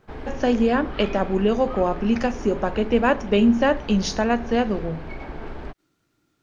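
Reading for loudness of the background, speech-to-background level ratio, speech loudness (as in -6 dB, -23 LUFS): -36.5 LUFS, 15.0 dB, -21.5 LUFS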